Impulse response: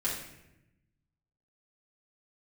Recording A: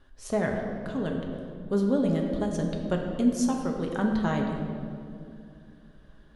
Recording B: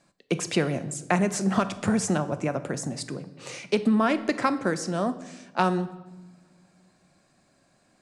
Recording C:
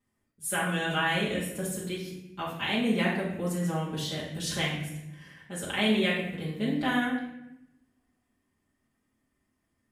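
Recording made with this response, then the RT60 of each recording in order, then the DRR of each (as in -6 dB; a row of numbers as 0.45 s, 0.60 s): C; 2.5 s, no single decay rate, 0.90 s; 1.0 dB, 11.0 dB, -8.0 dB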